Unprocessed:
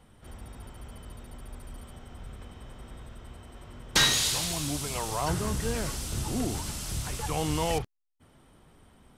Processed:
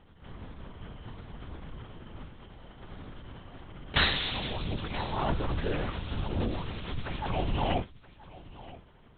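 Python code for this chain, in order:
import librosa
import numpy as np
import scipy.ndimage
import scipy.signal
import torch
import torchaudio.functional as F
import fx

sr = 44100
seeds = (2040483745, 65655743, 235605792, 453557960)

y = fx.highpass(x, sr, hz=100.0, slope=12, at=(2.25, 2.81), fade=0.02)
y = fx.lpc_vocoder(y, sr, seeds[0], excitation='whisper', order=8)
y = y + 10.0 ** (-18.5 / 20.0) * np.pad(y, (int(976 * sr / 1000.0), 0))[:len(y)]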